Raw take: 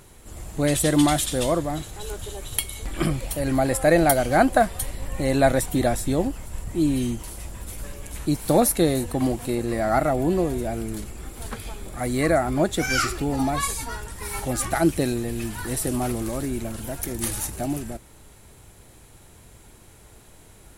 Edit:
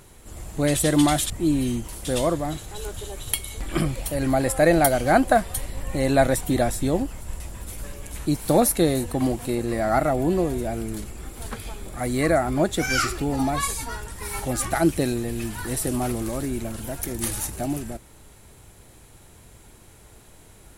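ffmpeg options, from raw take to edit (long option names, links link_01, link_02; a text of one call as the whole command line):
ffmpeg -i in.wav -filter_complex "[0:a]asplit=4[link_01][link_02][link_03][link_04];[link_01]atrim=end=1.302[link_05];[link_02]atrim=start=6.648:end=7.402[link_06];[link_03]atrim=start=1.298:end=6.652[link_07];[link_04]atrim=start=7.398[link_08];[link_05][link_06]acrossfade=duration=0.004:curve1=hsin:curve2=hsin[link_09];[link_09][link_07]acrossfade=duration=0.004:curve1=hsin:curve2=hsin[link_10];[link_10][link_08]acrossfade=duration=0.004:curve1=hsin:curve2=hsin" out.wav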